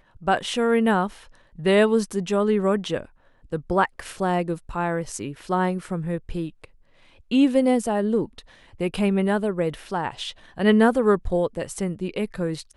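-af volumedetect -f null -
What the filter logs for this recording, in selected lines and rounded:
mean_volume: -23.5 dB
max_volume: -5.5 dB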